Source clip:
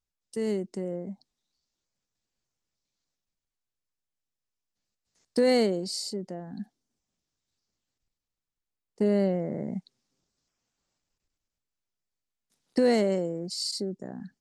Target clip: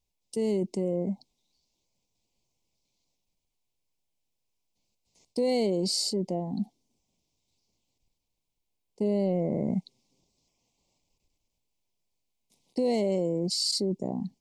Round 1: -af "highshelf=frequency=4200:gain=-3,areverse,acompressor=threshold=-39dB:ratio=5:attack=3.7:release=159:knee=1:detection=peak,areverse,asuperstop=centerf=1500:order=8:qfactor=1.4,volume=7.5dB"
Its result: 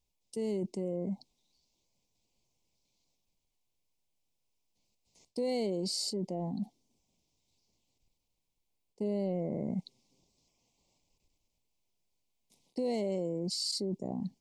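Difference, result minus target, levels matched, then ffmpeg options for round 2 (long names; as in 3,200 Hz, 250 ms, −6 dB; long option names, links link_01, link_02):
downward compressor: peak gain reduction +6.5 dB
-af "highshelf=frequency=4200:gain=-3,areverse,acompressor=threshold=-31dB:ratio=5:attack=3.7:release=159:knee=1:detection=peak,areverse,asuperstop=centerf=1500:order=8:qfactor=1.4,volume=7.5dB"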